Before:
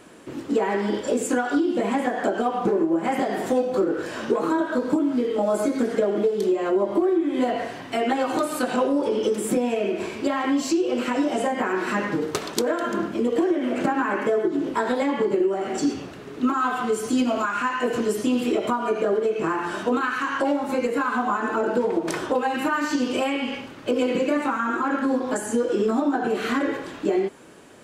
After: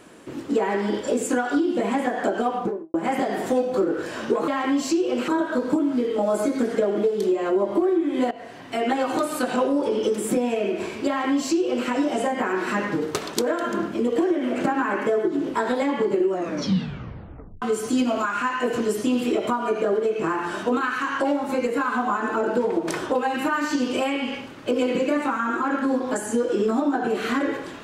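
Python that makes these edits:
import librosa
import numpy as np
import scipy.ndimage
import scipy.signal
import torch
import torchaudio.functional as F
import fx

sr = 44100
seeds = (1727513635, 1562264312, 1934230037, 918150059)

y = fx.studio_fade_out(x, sr, start_s=2.5, length_s=0.44)
y = fx.edit(y, sr, fx.fade_in_from(start_s=7.51, length_s=0.55, floor_db=-17.5),
    fx.duplicate(start_s=10.28, length_s=0.8, to_s=4.48),
    fx.tape_stop(start_s=15.49, length_s=1.33), tone=tone)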